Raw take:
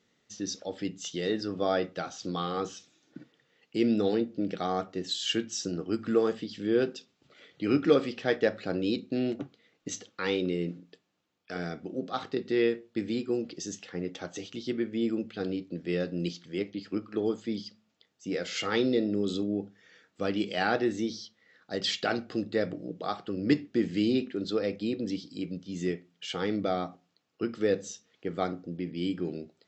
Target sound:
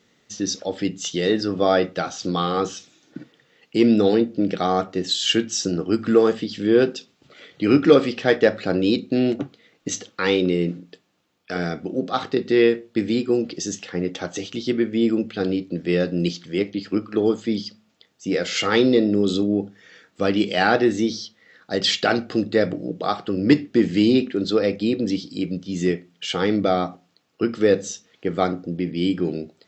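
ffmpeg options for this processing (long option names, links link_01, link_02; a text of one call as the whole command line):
ffmpeg -i in.wav -af "acontrast=87,volume=2.5dB" out.wav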